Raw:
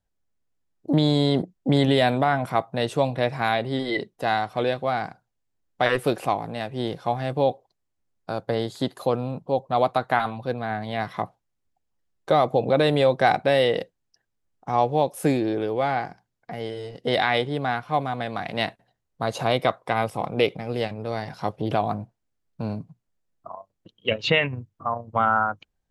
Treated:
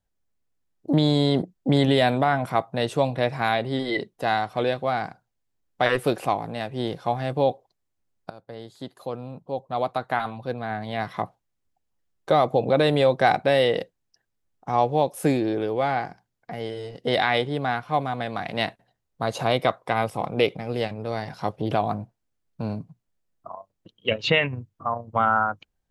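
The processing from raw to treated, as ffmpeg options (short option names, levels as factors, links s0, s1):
-filter_complex "[0:a]asplit=2[s0][s1];[s0]atrim=end=8.3,asetpts=PTS-STARTPTS,afade=t=out:st=8.296:d=0.004:c=hsin:silence=0.125893[s2];[s1]atrim=start=8.3,asetpts=PTS-STARTPTS,afade=t=in:d=2.93:silence=0.125893[s3];[s2][s3]concat=n=2:v=0:a=1"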